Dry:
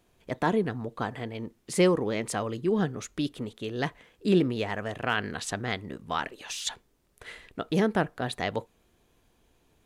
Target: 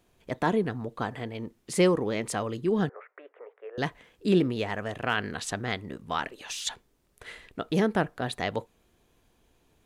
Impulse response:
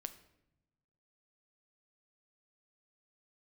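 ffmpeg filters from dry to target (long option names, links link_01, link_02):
-filter_complex "[0:a]asettb=1/sr,asplit=3[link_01][link_02][link_03];[link_01]atrim=end=2.894[link_04];[link_02]atrim=start=2.89:end=3.78,asetpts=PTS-STARTPTS,afade=type=in:duration=0.004:curve=qsin,afade=type=out:start_time=0.886:duration=0.004:curve=qsin,asuperpass=centerf=980:order=12:qfactor=0.59[link_05];[link_03]atrim=start=3.776[link_06];[link_04][link_05]acrossfade=duration=0.004:curve1=hsin:curve2=qsin[link_07];[link_07][link_06]acrossfade=duration=0.004:curve1=qsin:curve2=hsin"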